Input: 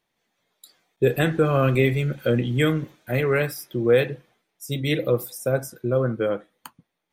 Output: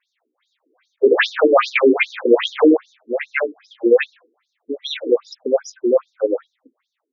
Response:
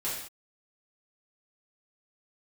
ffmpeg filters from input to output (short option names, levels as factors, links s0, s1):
-filter_complex "[0:a]asettb=1/sr,asplit=3[s0][s1][s2];[s0]atrim=end=1.114[s3];[s1]atrim=start=1.11:end=2.77,asetpts=PTS-STARTPTS,afade=t=in:d=0.004:c=qsin,afade=t=out:st=1.656:d=0.004:c=qsin,asplit=2[s4][s5];[s5]highpass=f=720:p=1,volume=25.1,asoftclip=type=tanh:threshold=0.422[s6];[s4][s6]amix=inputs=2:normalize=0,lowpass=f=1800:p=1,volume=0.501[s7];[s2]atrim=start=2.766[s8];[s3][s7]acrossfade=d=0.004:c1=hsin:c2=qsin[s9];[s9][s8]acrossfade=d=0.004:c1=qsin:c2=hsin,alimiter=level_in=3.16:limit=0.891:release=50:level=0:latency=1,afftfilt=real='re*between(b*sr/1024,310*pow(5200/310,0.5+0.5*sin(2*PI*2.5*pts/sr))/1.41,310*pow(5200/310,0.5+0.5*sin(2*PI*2.5*pts/sr))*1.41)':imag='im*between(b*sr/1024,310*pow(5200/310,0.5+0.5*sin(2*PI*2.5*pts/sr))/1.41,310*pow(5200/310,0.5+0.5*sin(2*PI*2.5*pts/sr))*1.41)':win_size=1024:overlap=0.75"